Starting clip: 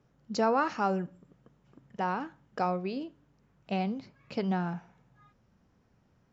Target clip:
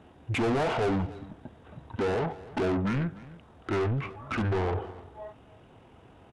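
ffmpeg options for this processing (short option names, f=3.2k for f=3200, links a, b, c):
-filter_complex "[0:a]asplit=2[a][b];[b]highpass=f=720:p=1,volume=34dB,asoftclip=type=tanh:threshold=-15dB[c];[a][c]amix=inputs=2:normalize=0,lowpass=f=5.6k:p=1,volume=-6dB,bandreject=f=1.1k:w=17,asetrate=22696,aresample=44100,atempo=1.94306,aecho=1:1:296:0.112,volume=-5dB"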